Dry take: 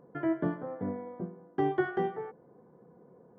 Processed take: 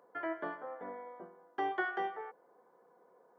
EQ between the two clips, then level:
high-pass filter 770 Hz 12 dB per octave
+2.0 dB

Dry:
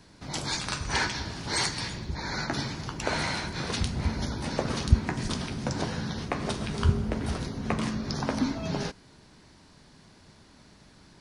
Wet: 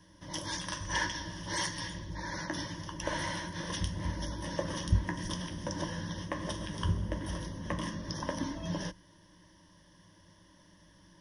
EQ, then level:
EQ curve with evenly spaced ripples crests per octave 1.2, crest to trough 15 dB
−8.0 dB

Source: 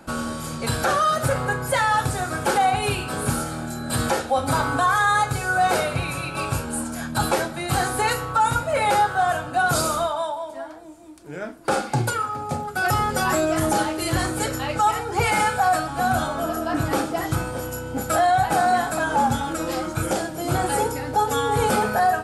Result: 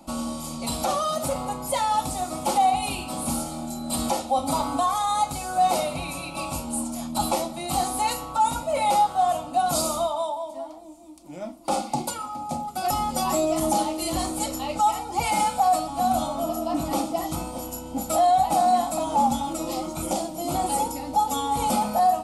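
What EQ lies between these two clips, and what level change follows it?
phaser with its sweep stopped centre 430 Hz, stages 6
0.0 dB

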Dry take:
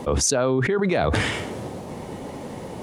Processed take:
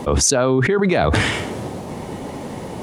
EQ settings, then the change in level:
parametric band 510 Hz −2.5 dB 0.35 octaves
+5.0 dB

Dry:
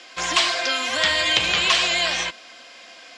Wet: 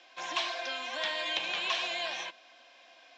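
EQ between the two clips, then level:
high-frequency loss of the air 65 metres
loudspeaker in its box 400–5,900 Hz, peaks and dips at 460 Hz −8 dB, 1,300 Hz −9 dB, 2,000 Hz −7 dB, 3,000 Hz −4 dB, 4,700 Hz −9 dB
−7.5 dB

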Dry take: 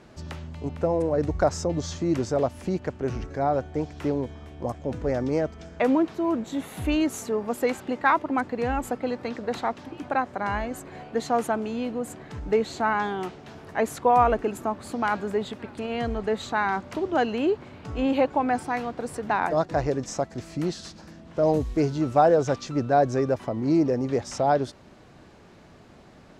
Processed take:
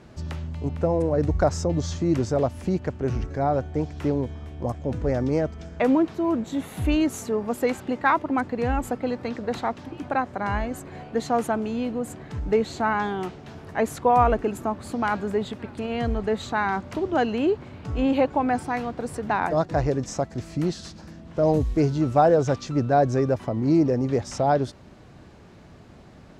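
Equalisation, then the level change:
parametric band 76 Hz +6.5 dB 2.8 octaves
0.0 dB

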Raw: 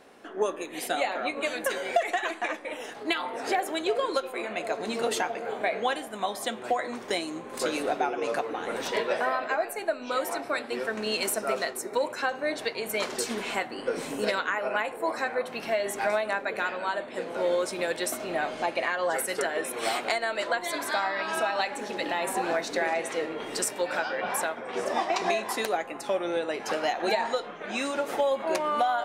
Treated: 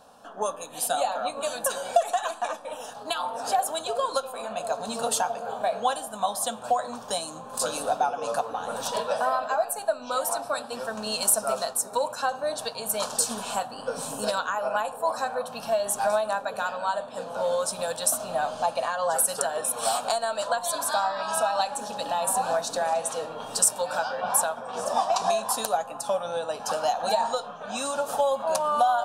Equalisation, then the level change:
dynamic equaliser 9,400 Hz, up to +7 dB, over −52 dBFS, Q 1.2
phaser with its sweep stopped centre 860 Hz, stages 4
+4.5 dB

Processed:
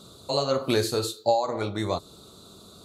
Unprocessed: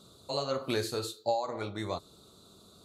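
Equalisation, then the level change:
dynamic equaliser 1,900 Hz, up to −3 dB, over −46 dBFS, Q 0.8
+8.0 dB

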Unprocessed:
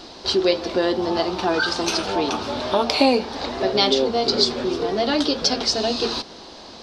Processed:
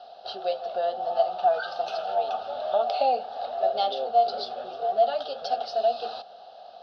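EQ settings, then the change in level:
formant filter a
phaser with its sweep stopped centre 1,600 Hz, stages 8
+6.5 dB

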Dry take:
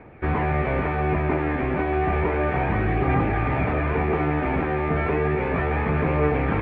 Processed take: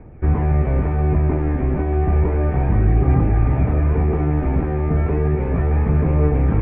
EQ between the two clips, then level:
spectral tilt −4 dB per octave
−5.0 dB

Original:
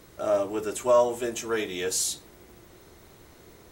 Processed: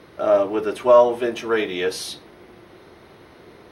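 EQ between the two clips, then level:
moving average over 6 samples
high-pass filter 180 Hz 6 dB per octave
+8.0 dB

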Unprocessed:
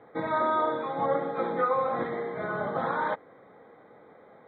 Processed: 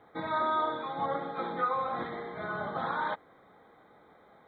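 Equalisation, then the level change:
octave-band graphic EQ 125/250/500/1,000/2,000 Hz −9/−7/−12/−4/−8 dB
+5.5 dB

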